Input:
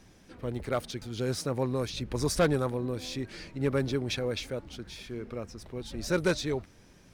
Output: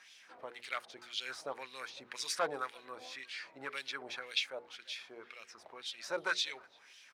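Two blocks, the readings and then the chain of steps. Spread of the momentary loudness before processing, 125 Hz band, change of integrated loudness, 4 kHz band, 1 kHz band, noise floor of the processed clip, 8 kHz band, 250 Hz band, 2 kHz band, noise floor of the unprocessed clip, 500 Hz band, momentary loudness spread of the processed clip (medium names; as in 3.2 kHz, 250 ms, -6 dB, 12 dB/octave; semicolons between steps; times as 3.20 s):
13 LU, -33.5 dB, -7.5 dB, -0.5 dB, -3.5 dB, -61 dBFS, -6.0 dB, -23.0 dB, -1.0 dB, -57 dBFS, -13.0 dB, 16 LU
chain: LFO band-pass sine 1.9 Hz 680–3200 Hz; tilt EQ +3.5 dB/octave; in parallel at -1 dB: compression, threshold -59 dBFS, peak gain reduction 26 dB; on the sum: hum notches 60/120/180/240/300/360/420/480 Hz; speakerphone echo 340 ms, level -26 dB; trim +1.5 dB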